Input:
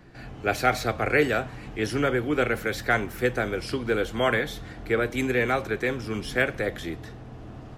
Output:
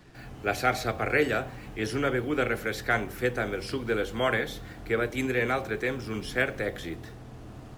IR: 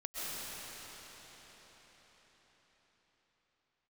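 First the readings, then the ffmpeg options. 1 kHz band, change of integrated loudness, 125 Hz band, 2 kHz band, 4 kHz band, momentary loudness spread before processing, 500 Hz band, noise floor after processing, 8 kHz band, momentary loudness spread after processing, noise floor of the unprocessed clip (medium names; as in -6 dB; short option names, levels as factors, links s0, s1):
-3.0 dB, -3.0 dB, -3.0 dB, -2.5 dB, -2.5 dB, 12 LU, -3.0 dB, -45 dBFS, -2.5 dB, 12 LU, -42 dBFS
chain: -af "bandreject=f=48.48:t=h:w=4,bandreject=f=96.96:t=h:w=4,bandreject=f=145.44:t=h:w=4,bandreject=f=193.92:t=h:w=4,bandreject=f=242.4:t=h:w=4,bandreject=f=290.88:t=h:w=4,bandreject=f=339.36:t=h:w=4,bandreject=f=387.84:t=h:w=4,bandreject=f=436.32:t=h:w=4,bandreject=f=484.8:t=h:w=4,bandreject=f=533.28:t=h:w=4,bandreject=f=581.76:t=h:w=4,bandreject=f=630.24:t=h:w=4,bandreject=f=678.72:t=h:w=4,bandreject=f=727.2:t=h:w=4,bandreject=f=775.68:t=h:w=4,bandreject=f=824.16:t=h:w=4,acrusher=bits=8:mix=0:aa=0.5,volume=0.75"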